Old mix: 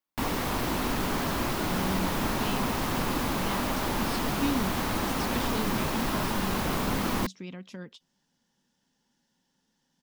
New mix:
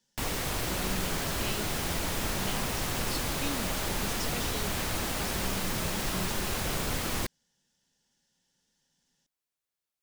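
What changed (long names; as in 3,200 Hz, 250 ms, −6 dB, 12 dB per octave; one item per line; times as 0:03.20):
speech: entry −1.00 s
master: add octave-band graphic EQ 250/1,000/8,000 Hz −9/−7/+5 dB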